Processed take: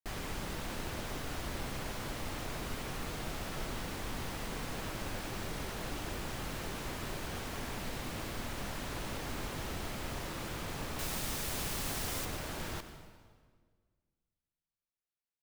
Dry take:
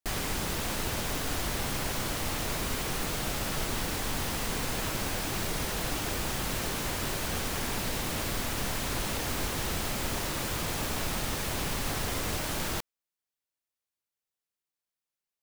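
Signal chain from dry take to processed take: high shelf 4400 Hz -7 dB, from 10.99 s +5 dB, from 12.25 s -6 dB; reverb RT60 1.7 s, pre-delay 84 ms, DRR 9.5 dB; gain -7 dB

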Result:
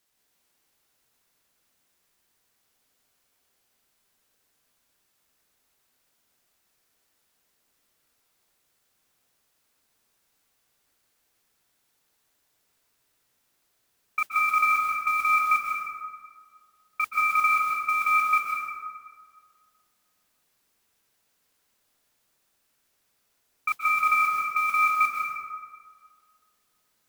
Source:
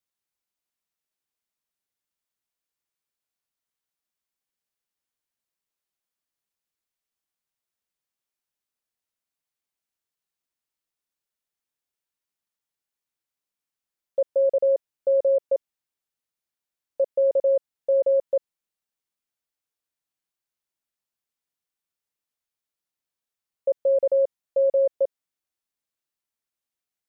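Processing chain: negative-ratio compressor -29 dBFS, ratio -1; ring modulator 1800 Hz; modulation noise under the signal 21 dB; plate-style reverb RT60 1.8 s, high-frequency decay 0.5×, pre-delay 0.115 s, DRR -2.5 dB; gain +7 dB

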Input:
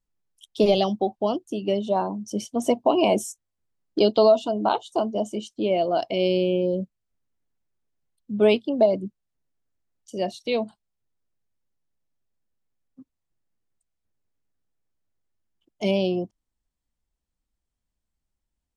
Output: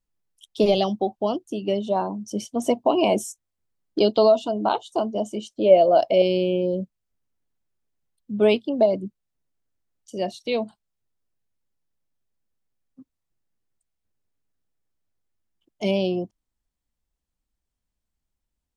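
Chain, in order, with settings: 5.44–6.22 bell 580 Hz +11.5 dB 0.5 oct

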